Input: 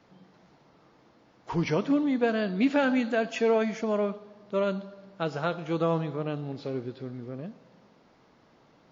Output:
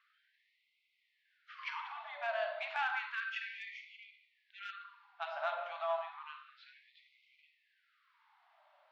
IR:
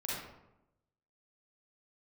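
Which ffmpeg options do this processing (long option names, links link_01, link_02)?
-filter_complex "[0:a]asettb=1/sr,asplit=3[link_01][link_02][link_03];[link_01]atrim=end=6.984[link_04];[link_02]atrim=start=6.98:end=7.41,asetpts=PTS-STARTPTS,afade=type=in:duration=0.004:curve=qsin,afade=type=out:start_time=0.426:duration=0.004:curve=qsin,aeval=exprs='val(0)+0.5*0.00355*sgn(val(0))':channel_layout=same[link_05];[link_03]atrim=start=7.406[link_06];[link_04][link_05]acrossfade=duration=0.004:curve1=hsin:curve2=qsin[link_07];[link_07][link_06]acrossfade=duration=0.004:curve1=qsin:curve2=hsin,lowpass=frequency=3600:width=0.5412,lowpass=frequency=3600:width=1.3066,bandreject=frequency=70.42:width_type=h:width=4,bandreject=frequency=140.84:width_type=h:width=4,bandreject=frequency=211.26:width_type=h:width=4,bandreject=frequency=281.68:width_type=h:width=4,bandreject=frequency=352.1:width_type=h:width=4,bandreject=frequency=422.52:width_type=h:width=4,bandreject=frequency=492.94:width_type=h:width=4,bandreject=frequency=563.36:width_type=h:width=4,bandreject=frequency=633.78:width_type=h:width=4,bandreject=frequency=704.2:width_type=h:width=4,bandreject=frequency=774.62:width_type=h:width=4,bandreject=frequency=845.04:width_type=h:width=4,bandreject=frequency=915.46:width_type=h:width=4,bandreject=frequency=985.88:width_type=h:width=4,bandreject=frequency=1056.3:width_type=h:width=4,bandreject=frequency=1126.72:width_type=h:width=4,bandreject=frequency=1197.14:width_type=h:width=4,bandreject=frequency=1267.56:width_type=h:width=4,bandreject=frequency=1337.98:width_type=h:width=4,bandreject=frequency=1408.4:width_type=h:width=4,asplit=2[link_08][link_09];[1:a]atrim=start_sample=2205,lowshelf=frequency=490:gain=9[link_10];[link_09][link_10]afir=irnorm=-1:irlink=0,volume=-5dB[link_11];[link_08][link_11]amix=inputs=2:normalize=0,aeval=exprs='0.447*(cos(1*acos(clip(val(0)/0.447,-1,1)))-cos(1*PI/2))+0.00891*(cos(8*acos(clip(val(0)/0.447,-1,1)))-cos(8*PI/2))':channel_layout=same,afftfilt=real='re*gte(b*sr/1024,550*pow(2000/550,0.5+0.5*sin(2*PI*0.31*pts/sr)))':imag='im*gte(b*sr/1024,550*pow(2000/550,0.5+0.5*sin(2*PI*0.31*pts/sr)))':win_size=1024:overlap=0.75,volume=-8dB"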